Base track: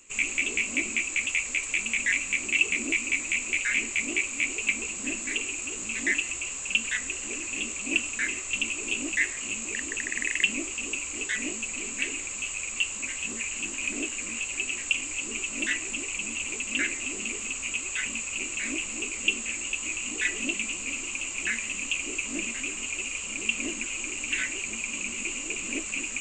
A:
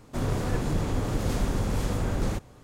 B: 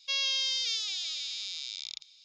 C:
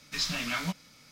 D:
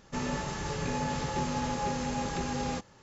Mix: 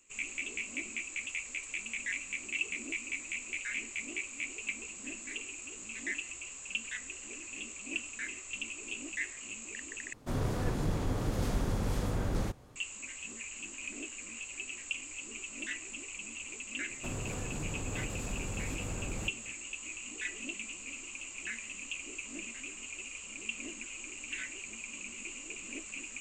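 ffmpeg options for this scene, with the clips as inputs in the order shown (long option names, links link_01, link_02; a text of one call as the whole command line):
ffmpeg -i bed.wav -i cue0.wav -filter_complex "[1:a]asplit=2[link_01][link_02];[0:a]volume=-11dB[link_03];[link_02]alimiter=limit=-23.5dB:level=0:latency=1:release=203[link_04];[link_03]asplit=2[link_05][link_06];[link_05]atrim=end=10.134[link_07];[link_01]atrim=end=2.63,asetpts=PTS-STARTPTS,volume=-5dB[link_08];[link_06]atrim=start=12.756[link_09];[link_04]atrim=end=2.63,asetpts=PTS-STARTPTS,volume=-6dB,afade=type=in:duration=0.004:curve=hsin,afade=type=out:start_time=2.626:duration=0.004:curve=hsin,adelay=16900[link_10];[link_07][link_08]acrossfade=duration=0.004:curve1=hsin:curve2=hsin[link_11];[link_11][link_09]acrossfade=duration=0.004:curve1=hsin:curve2=hsin[link_12];[link_12][link_10]amix=inputs=2:normalize=0" out.wav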